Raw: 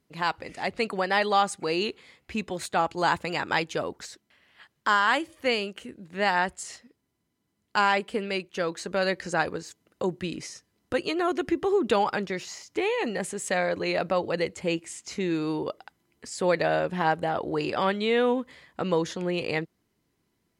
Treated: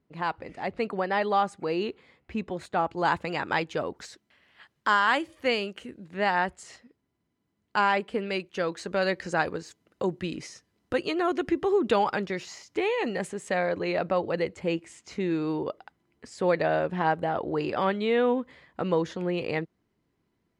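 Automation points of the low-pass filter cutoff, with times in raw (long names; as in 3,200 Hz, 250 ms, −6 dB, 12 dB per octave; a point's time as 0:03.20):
low-pass filter 6 dB per octave
1,300 Hz
from 0:03.05 2,600 Hz
from 0:03.96 5,100 Hz
from 0:06.14 2,500 Hz
from 0:08.26 4,600 Hz
from 0:13.28 2,200 Hz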